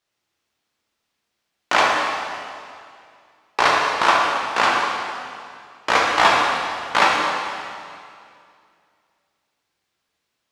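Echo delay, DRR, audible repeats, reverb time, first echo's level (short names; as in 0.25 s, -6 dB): none, -3.0 dB, none, 2.3 s, none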